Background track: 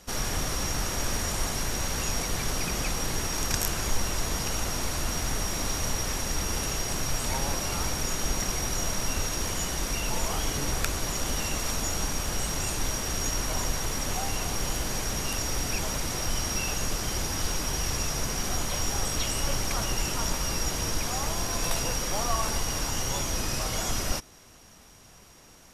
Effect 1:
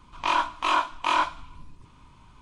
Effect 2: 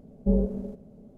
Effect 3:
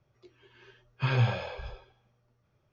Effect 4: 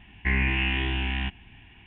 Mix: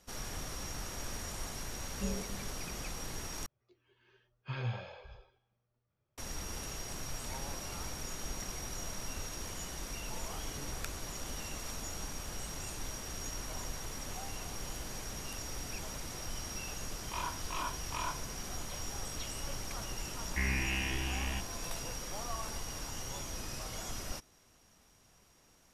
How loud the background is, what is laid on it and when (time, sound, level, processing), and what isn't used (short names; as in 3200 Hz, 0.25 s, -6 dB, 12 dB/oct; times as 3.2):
background track -12 dB
1.75 add 2 -15 dB
3.46 replace with 3 -11.5 dB
16.88 add 1 -16 dB
20.11 add 4 -9 dB